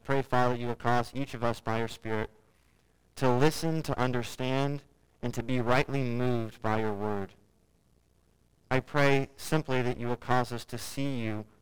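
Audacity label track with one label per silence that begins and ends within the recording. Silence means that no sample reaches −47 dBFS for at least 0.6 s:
2.290000	3.170000	silence
7.350000	8.710000	silence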